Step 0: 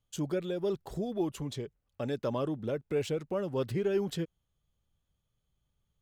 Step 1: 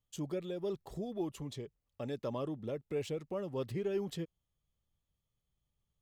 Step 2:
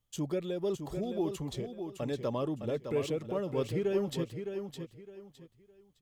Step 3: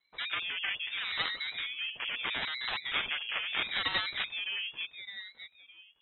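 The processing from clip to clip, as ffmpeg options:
-af "bandreject=f=1500:w=8,volume=0.531"
-af "aecho=1:1:611|1222|1833:0.422|0.11|0.0285,volume=1.68"
-af "aeval=exprs='0.1*(cos(1*acos(clip(val(0)/0.1,-1,1)))-cos(1*PI/2))+0.0141*(cos(3*acos(clip(val(0)/0.1,-1,1)))-cos(3*PI/2))+0.0447*(cos(7*acos(clip(val(0)/0.1,-1,1)))-cos(7*PI/2))':c=same,lowpass=f=2700:t=q:w=0.5098,lowpass=f=2700:t=q:w=0.6013,lowpass=f=2700:t=q:w=0.9,lowpass=f=2700:t=q:w=2.563,afreqshift=-3200,aeval=exprs='val(0)*sin(2*PI*570*n/s+570*0.6/0.76*sin(2*PI*0.76*n/s))':c=same"

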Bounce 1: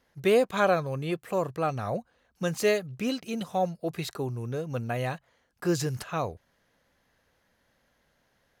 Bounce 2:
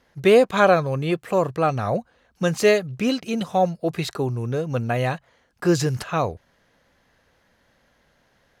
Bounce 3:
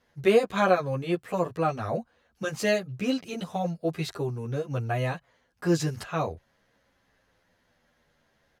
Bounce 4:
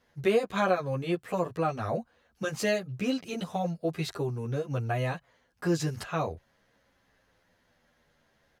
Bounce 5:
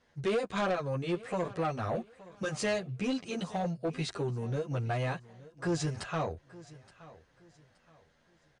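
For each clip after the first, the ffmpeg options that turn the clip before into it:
-af "highshelf=f=11000:g=-10.5,volume=2.37"
-filter_complex "[0:a]asplit=2[s0][s1];[s1]adelay=10.1,afreqshift=-0.49[s2];[s0][s2]amix=inputs=2:normalize=1,volume=0.708"
-af "acompressor=threshold=0.0398:ratio=1.5"
-af "asoftclip=type=tanh:threshold=0.0596,aecho=1:1:872|1744|2616:0.106|0.0328|0.0102" -ar 22050 -c:a libmp3lame -b:a 80k

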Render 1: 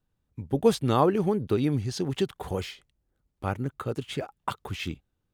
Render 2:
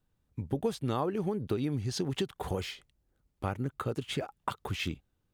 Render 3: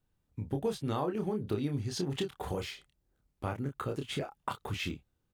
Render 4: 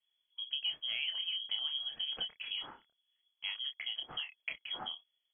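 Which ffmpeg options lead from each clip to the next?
-af "acompressor=threshold=0.0316:ratio=4,volume=1.12"
-filter_complex "[0:a]asplit=2[s0][s1];[s1]adelay=28,volume=0.531[s2];[s0][s2]amix=inputs=2:normalize=0,volume=0.75"
-af "lowpass=f=2900:t=q:w=0.5098,lowpass=f=2900:t=q:w=0.6013,lowpass=f=2900:t=q:w=0.9,lowpass=f=2900:t=q:w=2.563,afreqshift=-3400,volume=0.596"

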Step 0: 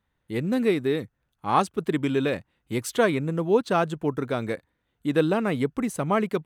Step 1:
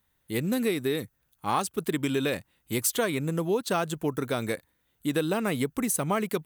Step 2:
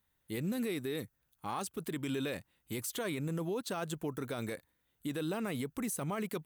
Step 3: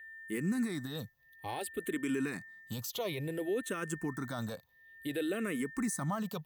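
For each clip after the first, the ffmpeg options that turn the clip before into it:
-af "aemphasis=mode=production:type=75fm,acompressor=threshold=0.0708:ratio=4"
-af "alimiter=limit=0.075:level=0:latency=1:release=16,volume=0.531"
-filter_complex "[0:a]aeval=exprs='val(0)+0.00316*sin(2*PI*1800*n/s)':c=same,asplit=2[s0][s1];[s1]afreqshift=-0.57[s2];[s0][s2]amix=inputs=2:normalize=1,volume=1.5"

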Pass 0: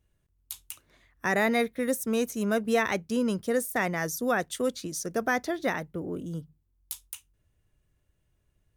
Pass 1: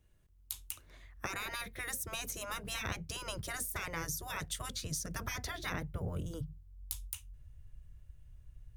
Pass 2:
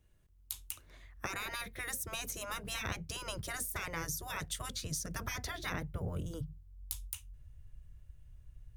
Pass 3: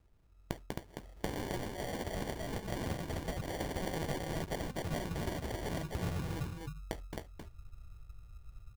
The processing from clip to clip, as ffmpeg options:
-filter_complex "[0:a]afftfilt=real='re*lt(hypot(re,im),0.1)':imag='im*lt(hypot(re,im),0.1)':win_size=1024:overlap=0.75,asubboost=boost=9.5:cutoff=94,acrossover=split=410[s0][s1];[s1]acompressor=threshold=0.0126:ratio=6[s2];[s0][s2]amix=inputs=2:normalize=0,volume=1.26"
-af anull
-af "aecho=1:1:266:0.631,acrusher=samples=34:mix=1:aa=0.000001,volume=1.12"

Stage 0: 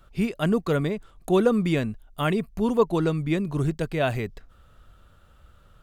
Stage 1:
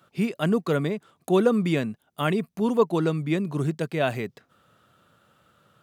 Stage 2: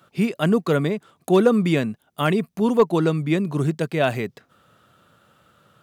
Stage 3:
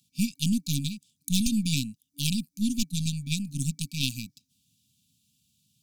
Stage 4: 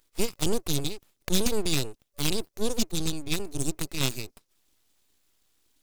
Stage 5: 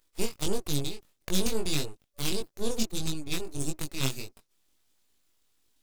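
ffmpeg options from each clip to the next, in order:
-af "highpass=f=130:w=0.5412,highpass=f=130:w=1.3066"
-af "asoftclip=type=hard:threshold=0.282,volume=1.58"
-af "aeval=exprs='0.447*(cos(1*acos(clip(val(0)/0.447,-1,1)))-cos(1*PI/2))+0.112*(cos(2*acos(clip(val(0)/0.447,-1,1)))-cos(2*PI/2))+0.0355*(cos(3*acos(clip(val(0)/0.447,-1,1)))-cos(3*PI/2))+0.0251*(cos(7*acos(clip(val(0)/0.447,-1,1)))-cos(7*PI/2))':c=same,afftfilt=real='re*(1-between(b*sr/4096,290,2300))':imag='im*(1-between(b*sr/4096,290,2300))':win_size=4096:overlap=0.75,highshelf=f=3700:t=q:w=1.5:g=11.5,volume=0.668"
-af "aeval=exprs='abs(val(0))':c=same,volume=1.33"
-af "flanger=delay=19.5:depth=3:speed=1.6"

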